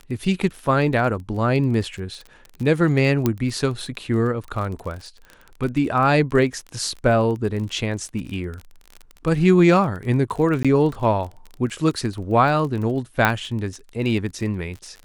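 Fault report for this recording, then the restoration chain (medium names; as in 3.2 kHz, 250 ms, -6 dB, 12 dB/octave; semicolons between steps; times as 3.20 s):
crackle 26 per s -29 dBFS
3.26 s: pop -6 dBFS
10.63–10.65 s: dropout 16 ms
13.25 s: pop -4 dBFS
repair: de-click; interpolate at 10.63 s, 16 ms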